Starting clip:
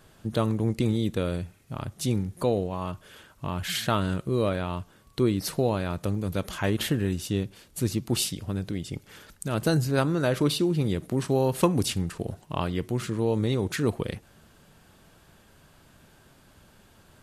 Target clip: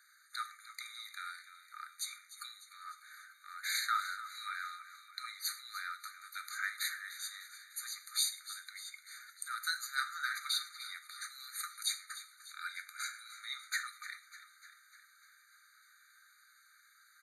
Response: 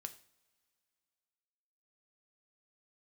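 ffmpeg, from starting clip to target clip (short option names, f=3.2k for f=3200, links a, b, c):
-filter_complex "[0:a]acrossover=split=240|1100|1800[a][b][c][d];[a]aeval=exprs='0.126*sin(PI/2*3.16*val(0)/0.126)':c=same[e];[e][b][c][d]amix=inputs=4:normalize=0,asettb=1/sr,asplit=3[f][g][h];[f]atrim=end=12.374[i];[g]atrim=start=12.37:end=13.28,asetpts=PTS-STARTPTS,afade=t=in:d=0.004:c=qsin,afade=t=out:st=0.906:d=0.004:c=qsin,aecho=1:1:1.3:0.82,atrim=end_sample=40131[j];[h]atrim=start=13.276[k];[i][j]acrossfade=d=0.004:c1=hsin:c2=qsin[l];[l][k]acrossfade=d=0.004:c1=qsin:c2=hsin,asplit=8[m][n][o][p][q][r][s][t];[n]adelay=299,afreqshift=-48,volume=-14dB[u];[o]adelay=598,afreqshift=-96,volume=-18.2dB[v];[p]adelay=897,afreqshift=-144,volume=-22.3dB[w];[q]adelay=1196,afreqshift=-192,volume=-26.5dB[x];[r]adelay=1495,afreqshift=-240,volume=-30.6dB[y];[s]adelay=1794,afreqshift=-288,volume=-34.8dB[z];[t]adelay=2093,afreqshift=-336,volume=-38.9dB[aa];[m][u][v][w][x][y][z][aa]amix=inputs=8:normalize=0[ab];[1:a]atrim=start_sample=2205,afade=t=out:st=0.18:d=0.01,atrim=end_sample=8379[ac];[ab][ac]afir=irnorm=-1:irlink=0,afftfilt=real='re*eq(mod(floor(b*sr/1024/1200),2),1)':imag='im*eq(mod(floor(b*sr/1024/1200),2),1)':win_size=1024:overlap=0.75,volume=3dB"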